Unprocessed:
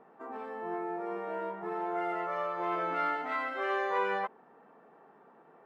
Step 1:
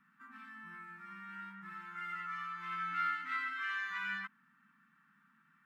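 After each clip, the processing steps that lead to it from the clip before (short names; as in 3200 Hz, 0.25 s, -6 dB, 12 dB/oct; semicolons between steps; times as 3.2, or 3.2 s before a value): elliptic band-stop 210–1400 Hz, stop band 80 dB; low shelf 150 Hz -10.5 dB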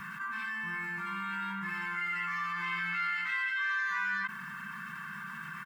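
comb 1.9 ms, depth 98%; fast leveller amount 70%; gain +1 dB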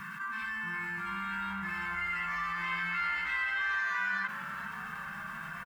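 crackle 520/s -57 dBFS; on a send: frequency-shifting echo 0.412 s, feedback 64%, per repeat -120 Hz, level -12.5 dB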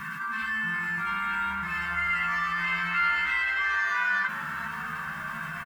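doubler 13 ms -5 dB; gain +5 dB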